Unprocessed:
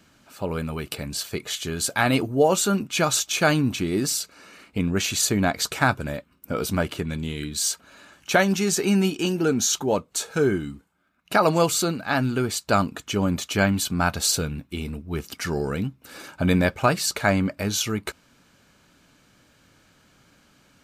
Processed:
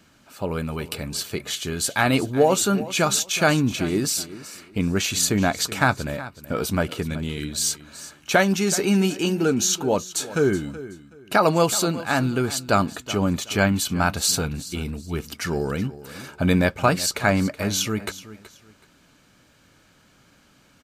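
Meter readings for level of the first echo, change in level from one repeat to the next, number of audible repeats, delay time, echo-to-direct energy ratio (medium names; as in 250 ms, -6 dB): -16.0 dB, -12.0 dB, 2, 375 ms, -16.0 dB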